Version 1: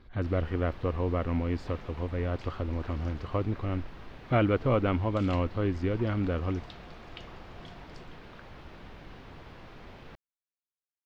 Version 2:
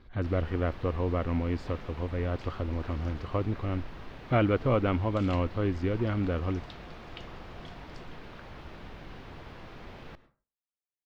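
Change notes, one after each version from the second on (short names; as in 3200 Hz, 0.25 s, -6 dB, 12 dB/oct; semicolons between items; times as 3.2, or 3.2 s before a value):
first sound: send on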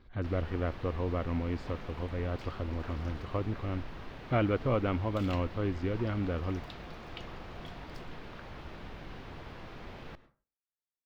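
speech -3.5 dB; second sound: remove steep low-pass 8700 Hz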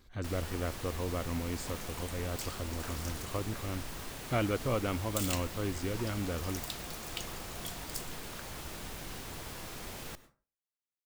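speech -3.5 dB; master: remove air absorption 310 m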